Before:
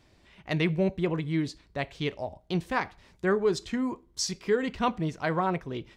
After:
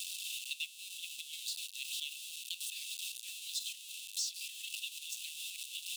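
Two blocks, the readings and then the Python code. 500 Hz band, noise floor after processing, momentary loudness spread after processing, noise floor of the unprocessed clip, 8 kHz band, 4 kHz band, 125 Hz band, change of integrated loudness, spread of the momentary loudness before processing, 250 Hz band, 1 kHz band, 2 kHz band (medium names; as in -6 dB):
under -40 dB, -51 dBFS, 5 LU, -63 dBFS, +1.5 dB, +1.5 dB, under -40 dB, -10.0 dB, 8 LU, under -40 dB, under -40 dB, -11.0 dB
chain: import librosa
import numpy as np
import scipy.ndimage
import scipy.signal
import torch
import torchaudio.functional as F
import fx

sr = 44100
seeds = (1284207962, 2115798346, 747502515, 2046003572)

y = x + 0.5 * 10.0 ** (-29.0 / 20.0) * np.sign(x)
y = scipy.signal.sosfilt(scipy.signal.cheby1(6, 6, 2600.0, 'highpass', fs=sr, output='sos'), y)
y = fx.band_squash(y, sr, depth_pct=70)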